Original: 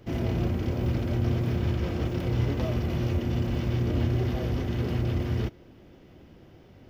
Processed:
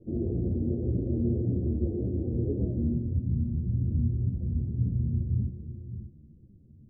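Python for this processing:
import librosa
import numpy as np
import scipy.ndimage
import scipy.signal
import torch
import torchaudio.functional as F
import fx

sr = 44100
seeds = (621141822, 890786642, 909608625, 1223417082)

y = scipy.signal.sosfilt(scipy.signal.cheby2(4, 60, 2200.0, 'lowpass', fs=sr, output='sos'), x)
y = fx.echo_multitap(y, sr, ms=(191, 536, 601), db=(-10.0, -13.0, -13.5))
y = fx.filter_sweep_lowpass(y, sr, from_hz=360.0, to_hz=170.0, start_s=2.62, end_s=3.27, q=1.7)
y = fx.ensemble(y, sr)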